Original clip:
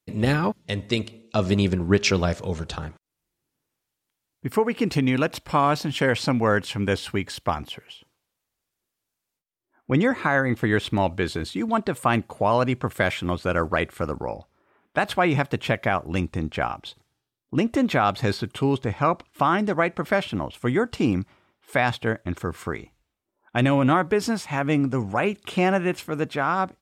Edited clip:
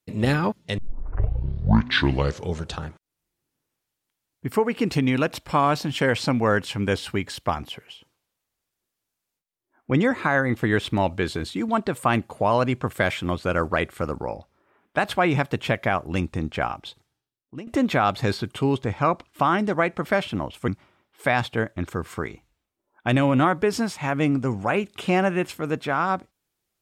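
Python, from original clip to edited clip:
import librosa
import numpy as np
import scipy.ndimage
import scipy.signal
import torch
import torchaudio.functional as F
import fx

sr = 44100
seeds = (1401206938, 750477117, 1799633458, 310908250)

y = fx.edit(x, sr, fx.tape_start(start_s=0.78, length_s=1.8),
    fx.fade_out_to(start_s=16.84, length_s=0.83, floor_db=-19.5),
    fx.cut(start_s=20.68, length_s=0.49), tone=tone)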